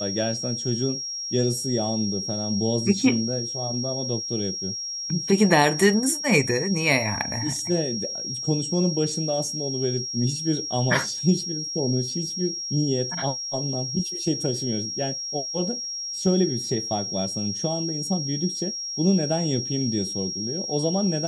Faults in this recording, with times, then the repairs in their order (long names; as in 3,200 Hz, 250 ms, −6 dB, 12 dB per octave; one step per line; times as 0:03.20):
whistle 5,600 Hz −29 dBFS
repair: notch filter 5,600 Hz, Q 30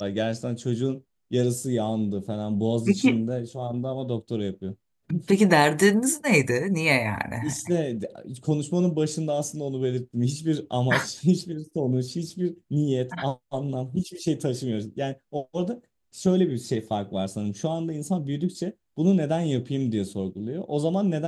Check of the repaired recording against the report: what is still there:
none of them is left